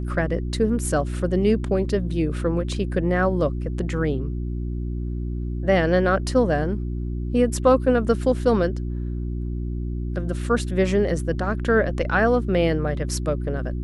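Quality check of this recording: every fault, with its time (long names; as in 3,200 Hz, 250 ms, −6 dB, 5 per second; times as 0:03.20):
mains hum 60 Hz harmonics 6 −27 dBFS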